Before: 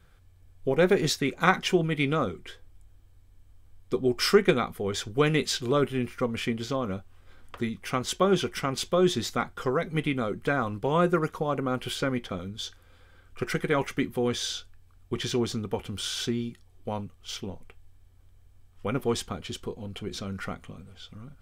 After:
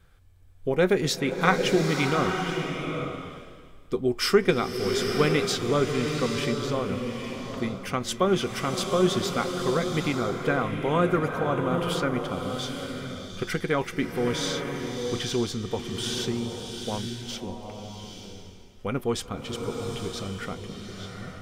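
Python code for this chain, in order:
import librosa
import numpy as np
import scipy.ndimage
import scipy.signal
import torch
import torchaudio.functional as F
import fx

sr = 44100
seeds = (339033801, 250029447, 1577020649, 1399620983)

y = fx.rev_bloom(x, sr, seeds[0], attack_ms=880, drr_db=3.5)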